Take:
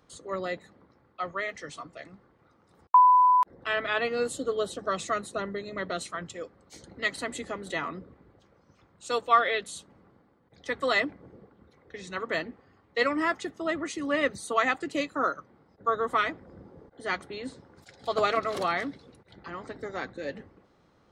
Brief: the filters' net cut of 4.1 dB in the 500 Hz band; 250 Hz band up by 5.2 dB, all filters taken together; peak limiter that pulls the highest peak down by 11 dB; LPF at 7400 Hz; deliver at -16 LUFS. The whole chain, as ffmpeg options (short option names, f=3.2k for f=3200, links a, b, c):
-af "lowpass=7.4k,equalizer=f=250:t=o:g=9,equalizer=f=500:t=o:g=-7.5,volume=17dB,alimiter=limit=-5dB:level=0:latency=1"